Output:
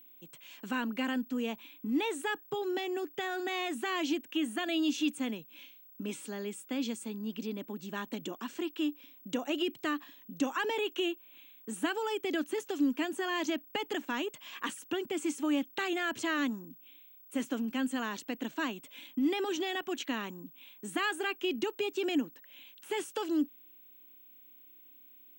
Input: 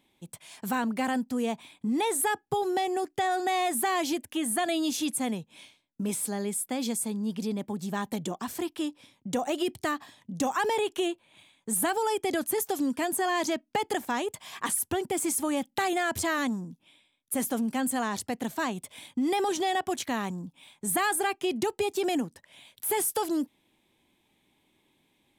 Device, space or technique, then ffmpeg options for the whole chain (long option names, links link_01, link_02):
old television with a line whistle: -af "highpass=frequency=160:width=0.5412,highpass=frequency=160:width=1.3066,equalizer=frequency=180:width_type=q:width=4:gain=-6,equalizer=frequency=290:width_type=q:width=4:gain=7,equalizer=frequency=760:width_type=q:width=4:gain=-8,equalizer=frequency=1500:width_type=q:width=4:gain=4,equalizer=frequency=2800:width_type=q:width=4:gain=9,equalizer=frequency=5000:width_type=q:width=4:gain=-5,lowpass=frequency=7000:width=0.5412,lowpass=frequency=7000:width=1.3066,aeval=exprs='val(0)+0.00398*sin(2*PI*15734*n/s)':channel_layout=same,volume=-5.5dB"